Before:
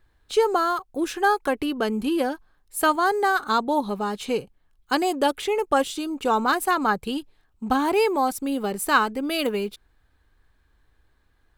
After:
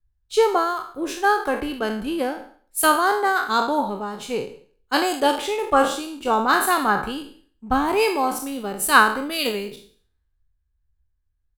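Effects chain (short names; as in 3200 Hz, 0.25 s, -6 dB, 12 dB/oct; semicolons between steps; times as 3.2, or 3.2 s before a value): spectral trails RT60 0.59 s; echo 0.189 s -21 dB; three-band expander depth 70%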